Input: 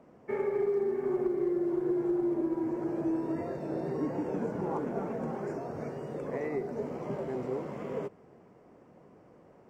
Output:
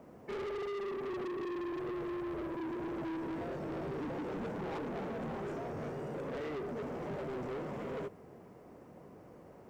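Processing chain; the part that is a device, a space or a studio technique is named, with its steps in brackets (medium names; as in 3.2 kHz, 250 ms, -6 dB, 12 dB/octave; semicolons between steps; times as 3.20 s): 1.79–2.55 s: comb 1.8 ms, depth 83%; open-reel tape (saturation -39.5 dBFS, distortion -6 dB; peaking EQ 69 Hz +5 dB 0.96 oct; white noise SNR 42 dB); trim +2.5 dB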